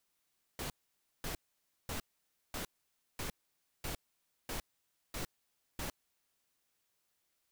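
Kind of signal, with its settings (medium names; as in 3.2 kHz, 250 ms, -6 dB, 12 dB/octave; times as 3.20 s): noise bursts pink, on 0.11 s, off 0.54 s, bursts 9, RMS -39.5 dBFS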